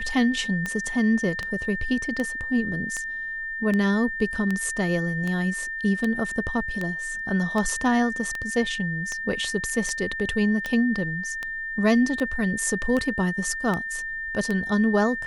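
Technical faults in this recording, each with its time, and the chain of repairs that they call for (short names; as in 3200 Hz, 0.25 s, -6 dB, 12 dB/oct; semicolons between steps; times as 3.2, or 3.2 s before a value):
tick 78 rpm -15 dBFS
tone 1800 Hz -29 dBFS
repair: de-click; notch 1800 Hz, Q 30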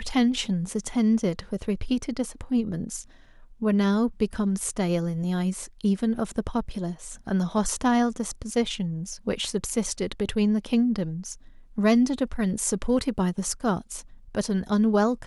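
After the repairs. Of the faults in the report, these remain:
none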